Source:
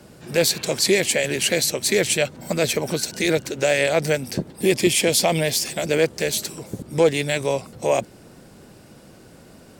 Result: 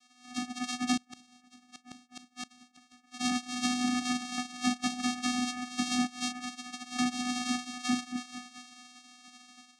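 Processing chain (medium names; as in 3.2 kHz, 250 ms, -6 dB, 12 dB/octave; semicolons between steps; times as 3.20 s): touch-sensitive flanger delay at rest 8.6 ms, full sweep at -15.5 dBFS; two-band feedback delay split 1.2 kHz, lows 218 ms, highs 342 ms, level -13.5 dB; spectral gate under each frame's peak -25 dB weak; vocoder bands 4, square 248 Hz; compression 8:1, threshold -40 dBFS, peak gain reduction 13.5 dB; 0.97–3.12 s: inverted gate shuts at -39 dBFS, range -26 dB; bass shelf 380 Hz +11.5 dB; level rider gain up to 9 dB; treble shelf 5.2 kHz +8 dB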